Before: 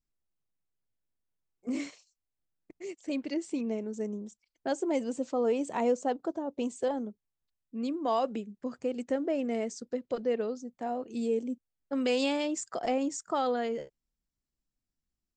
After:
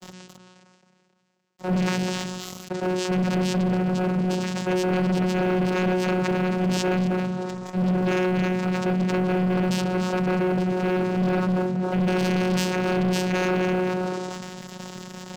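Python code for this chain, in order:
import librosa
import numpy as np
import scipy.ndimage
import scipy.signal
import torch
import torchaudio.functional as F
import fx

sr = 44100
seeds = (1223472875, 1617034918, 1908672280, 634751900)

p1 = x + 0.5 * 10.0 ** (-38.5 / 20.0) * np.sign(x)
p2 = fx.low_shelf(p1, sr, hz=270.0, db=-8.5)
p3 = p2 + fx.echo_feedback(p2, sr, ms=268, feedback_pct=21, wet_db=-9.5, dry=0)
p4 = fx.noise_vocoder(p3, sr, seeds[0], bands=4)
p5 = fx.hum_notches(p4, sr, base_hz=60, count=4)
p6 = fx.comb_fb(p5, sr, f0_hz=470.0, decay_s=0.54, harmonics='all', damping=0.0, mix_pct=80)
p7 = fx.dynamic_eq(p6, sr, hz=690.0, q=0.99, threshold_db=-56.0, ratio=4.0, max_db=-7)
p8 = fx.fold_sine(p7, sr, drive_db=14, ceiling_db=-28.5)
p9 = p7 + F.gain(torch.from_numpy(p8), -4.5).numpy()
p10 = fx.vocoder(p9, sr, bands=8, carrier='saw', carrier_hz=183.0)
p11 = fx.leveller(p10, sr, passes=3)
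p12 = fx.sustainer(p11, sr, db_per_s=26.0)
y = F.gain(torch.from_numpy(p12), 7.5).numpy()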